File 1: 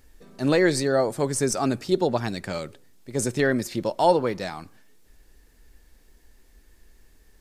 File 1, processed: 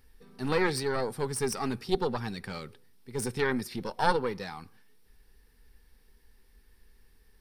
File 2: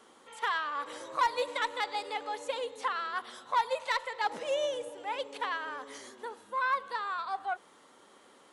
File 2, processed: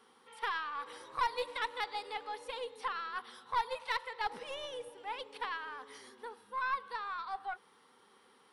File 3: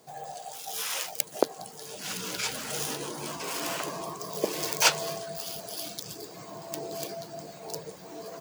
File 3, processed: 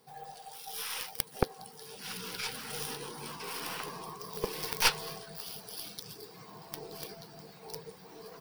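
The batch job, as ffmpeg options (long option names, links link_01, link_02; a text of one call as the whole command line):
ffmpeg -i in.wav -af "aeval=exprs='0.891*(cos(1*acos(clip(val(0)/0.891,-1,1)))-cos(1*PI/2))+0.0631*(cos(5*acos(clip(val(0)/0.891,-1,1)))-cos(5*PI/2))+0.251*(cos(6*acos(clip(val(0)/0.891,-1,1)))-cos(6*PI/2))+0.0501*(cos(7*acos(clip(val(0)/0.891,-1,1)))-cos(7*PI/2))+0.0794*(cos(8*acos(clip(val(0)/0.891,-1,1)))-cos(8*PI/2))':channel_layout=same,superequalizer=6b=0.501:8b=0.316:15b=0.316,volume=-4.5dB" out.wav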